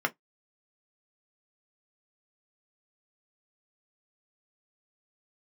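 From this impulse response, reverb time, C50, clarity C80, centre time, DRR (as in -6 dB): 0.10 s, 29.0 dB, 45.5 dB, 5 ms, 3.5 dB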